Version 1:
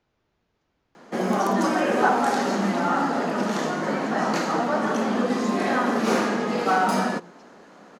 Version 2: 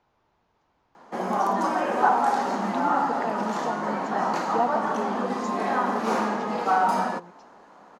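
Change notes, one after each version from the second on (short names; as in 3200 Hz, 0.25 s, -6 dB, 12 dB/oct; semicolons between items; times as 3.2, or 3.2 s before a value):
background -7.5 dB; master: add bell 920 Hz +11 dB 0.99 oct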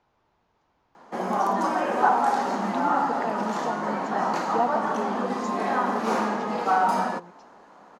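none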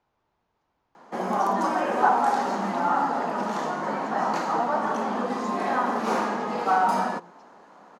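speech -5.5 dB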